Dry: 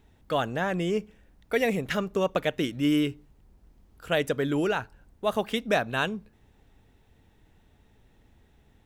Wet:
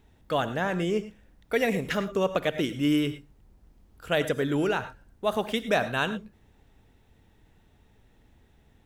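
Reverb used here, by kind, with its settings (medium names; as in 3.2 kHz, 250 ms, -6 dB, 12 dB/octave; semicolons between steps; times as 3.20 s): gated-style reverb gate 130 ms rising, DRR 11.5 dB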